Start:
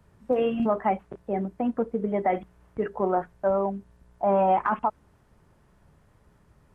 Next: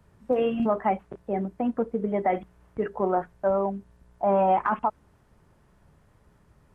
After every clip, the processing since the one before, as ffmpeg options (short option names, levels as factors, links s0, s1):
-af anull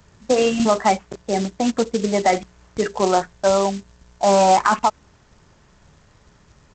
-af "aresample=16000,acrusher=bits=5:mode=log:mix=0:aa=0.000001,aresample=44100,highshelf=f=2200:g=11,volume=2"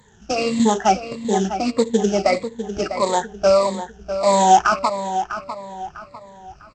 -filter_complex "[0:a]afftfilt=real='re*pow(10,16/40*sin(2*PI*(1*log(max(b,1)*sr/1024/100)/log(2)-(-1.6)*(pts-256)/sr)))':imag='im*pow(10,16/40*sin(2*PI*(1*log(max(b,1)*sr/1024/100)/log(2)-(-1.6)*(pts-256)/sr)))':win_size=1024:overlap=0.75,asplit=2[s0][s1];[s1]adelay=650,lowpass=f=4400:p=1,volume=0.316,asplit=2[s2][s3];[s3]adelay=650,lowpass=f=4400:p=1,volume=0.37,asplit=2[s4][s5];[s5]adelay=650,lowpass=f=4400:p=1,volume=0.37,asplit=2[s6][s7];[s7]adelay=650,lowpass=f=4400:p=1,volume=0.37[s8];[s2][s4][s6][s8]amix=inputs=4:normalize=0[s9];[s0][s9]amix=inputs=2:normalize=0,volume=0.75"